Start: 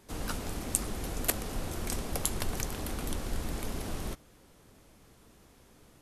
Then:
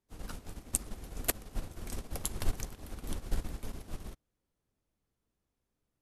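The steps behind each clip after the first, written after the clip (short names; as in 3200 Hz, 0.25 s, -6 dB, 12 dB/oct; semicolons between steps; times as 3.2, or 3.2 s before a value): low shelf 150 Hz +5 dB; upward expander 2.5:1, over -42 dBFS; gain +2 dB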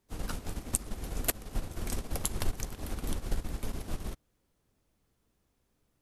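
compressor 2:1, threshold -41 dBFS, peak gain reduction 10.5 dB; gain +9 dB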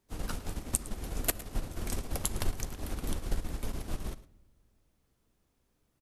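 echo 0.109 s -18 dB; on a send at -21 dB: reverb RT60 1.2 s, pre-delay 3 ms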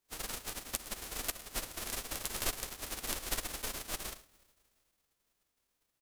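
spectral whitening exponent 0.3; gain -7.5 dB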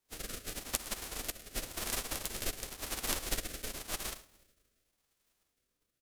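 rotary speaker horn 0.9 Hz; gain +3.5 dB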